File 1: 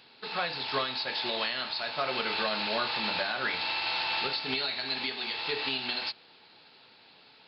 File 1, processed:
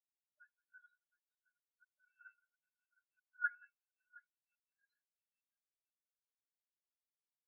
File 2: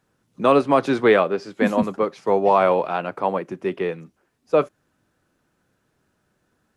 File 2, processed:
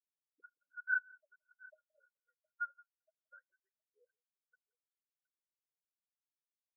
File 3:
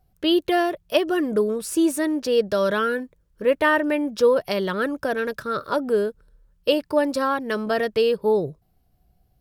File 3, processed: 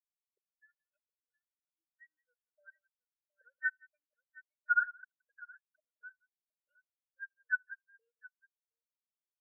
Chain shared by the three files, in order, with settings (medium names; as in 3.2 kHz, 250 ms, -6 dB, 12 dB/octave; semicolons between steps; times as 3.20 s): tilt EQ +4.5 dB/octave; compression 3:1, threshold -34 dBFS; waveshaping leveller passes 5; trance gate "...x.xxx..x" 122 bpm -60 dB; auto-wah 220–1400 Hz, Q 8.7, up, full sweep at -22 dBFS; brick-wall FIR band-stop 650–1400 Hz; multi-tap echo 65/79/173/717 ms -20/-12/-7/-5.5 dB; spectral contrast expander 4:1; trim +2 dB